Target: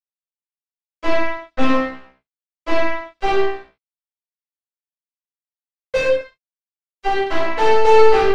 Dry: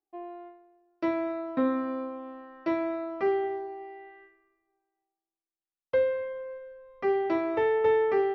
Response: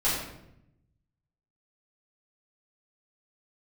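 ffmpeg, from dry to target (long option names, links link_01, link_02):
-filter_complex "[0:a]asettb=1/sr,asplit=3[link_01][link_02][link_03];[link_01]atrim=end=6.054[link_04];[link_02]atrim=start=6.05:end=7.98,asetpts=PTS-STARTPTS,afade=type=in:duration=0.004:curve=qsin,afade=type=out:start_time=1.926:duration=0.004:curve=qsin,highpass=frequency=260:poles=1[link_05];[link_03]atrim=start=7.976[link_06];[link_04][link_05]acrossfade=duration=0.004:curve1=hsin:curve2=qsin[link_07];[link_07][link_06]acrossfade=duration=0.004:curve1=qsin:curve2=hsin,acrusher=bits=3:mix=0:aa=0.5[link_08];[1:a]atrim=start_sample=2205,afade=type=out:start_time=0.23:duration=0.01,atrim=end_sample=10584[link_09];[link_08][link_09]afir=irnorm=-1:irlink=0,volume=-1.5dB"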